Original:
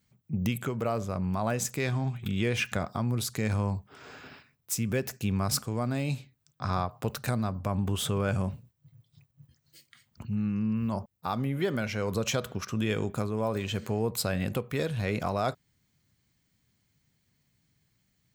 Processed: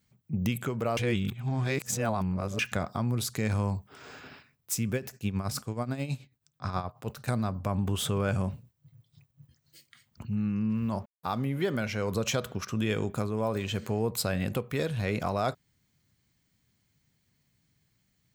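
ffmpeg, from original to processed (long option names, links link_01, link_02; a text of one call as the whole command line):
ffmpeg -i in.wav -filter_complex "[0:a]asettb=1/sr,asplit=3[link_01][link_02][link_03];[link_01]atrim=end=3.554[link_04];[link_02]atrim=start=3.55:end=4.2,asetpts=PTS-STARTPTS,afade=type=in:duration=0.004:curve=qsin,afade=type=out:start_time=0.646:duration=0.004:curve=qsin,highshelf=frequency=6900:gain=5.5[link_05];[link_03]atrim=start=4.196[link_06];[link_04][link_05]acrossfade=duration=0.004:curve1=hsin:curve2=qsin[link_07];[link_07][link_06]acrossfade=duration=0.004:curve1=qsin:curve2=hsin,asplit=3[link_08][link_09][link_10];[link_08]afade=type=out:start_time=4.9:duration=0.02[link_11];[link_09]tremolo=f=9.3:d=0.7,afade=type=in:start_time=4.9:duration=0.02,afade=type=out:start_time=7.27:duration=0.02[link_12];[link_10]afade=type=in:start_time=7.27:duration=0.02[link_13];[link_11][link_12][link_13]amix=inputs=3:normalize=0,asettb=1/sr,asplit=3[link_14][link_15][link_16];[link_14]atrim=end=10.704[link_17];[link_15]atrim=start=10.7:end=11.7,asetpts=PTS-STARTPTS,afade=type=in:duration=0.004:curve=qsin,afade=type=out:start_time=0.996:duration=0.004:curve=qsin,aeval=exprs='sgn(val(0))*max(abs(val(0))-0.00133,0)':channel_layout=same[link_18];[link_16]atrim=start=11.696[link_19];[link_17][link_18]acrossfade=duration=0.004:curve1=hsin:curve2=qsin[link_20];[link_20][link_19]acrossfade=duration=0.004:curve1=qsin:curve2=hsin,asplit=3[link_21][link_22][link_23];[link_21]atrim=end=0.972[link_24];[link_22]atrim=start=0.968:end=2.592,asetpts=PTS-STARTPTS,areverse[link_25];[link_23]atrim=start=2.588[link_26];[link_24][link_25]acrossfade=duration=0.004:curve1=hsin:curve2=hsin[link_27];[link_27][link_26]acrossfade=duration=0.004:curve1=hsin:curve2=hsin" out.wav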